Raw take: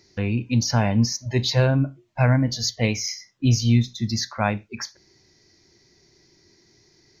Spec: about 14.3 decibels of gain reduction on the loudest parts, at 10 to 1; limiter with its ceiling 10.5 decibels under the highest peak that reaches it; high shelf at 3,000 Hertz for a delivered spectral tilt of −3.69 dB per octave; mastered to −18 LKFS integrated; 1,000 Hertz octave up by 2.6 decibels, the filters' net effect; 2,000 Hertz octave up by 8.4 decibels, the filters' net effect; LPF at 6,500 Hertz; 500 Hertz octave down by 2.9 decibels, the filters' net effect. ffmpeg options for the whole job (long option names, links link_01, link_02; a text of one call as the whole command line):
ffmpeg -i in.wav -af "lowpass=6500,equalizer=frequency=500:width_type=o:gain=-5.5,equalizer=frequency=1000:width_type=o:gain=3,equalizer=frequency=2000:width_type=o:gain=8.5,highshelf=frequency=3000:gain=5,acompressor=threshold=-28dB:ratio=10,volume=17dB,alimiter=limit=-8dB:level=0:latency=1" out.wav